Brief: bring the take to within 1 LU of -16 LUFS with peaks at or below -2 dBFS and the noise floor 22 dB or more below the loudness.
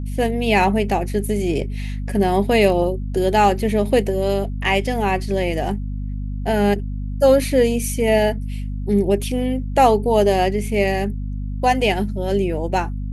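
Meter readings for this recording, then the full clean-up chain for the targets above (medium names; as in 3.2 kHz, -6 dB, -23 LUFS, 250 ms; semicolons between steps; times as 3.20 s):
hum 50 Hz; highest harmonic 250 Hz; hum level -23 dBFS; loudness -19.5 LUFS; peak level -2.0 dBFS; loudness target -16.0 LUFS
-> de-hum 50 Hz, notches 5; trim +3.5 dB; peak limiter -2 dBFS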